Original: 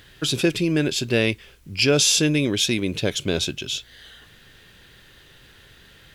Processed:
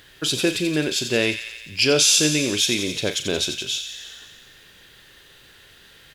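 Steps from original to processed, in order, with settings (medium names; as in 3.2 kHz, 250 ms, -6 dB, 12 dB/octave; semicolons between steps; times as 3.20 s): tone controls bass -6 dB, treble +2 dB; doubling 39 ms -11 dB; on a send: feedback echo behind a high-pass 88 ms, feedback 70%, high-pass 1.9 kHz, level -8 dB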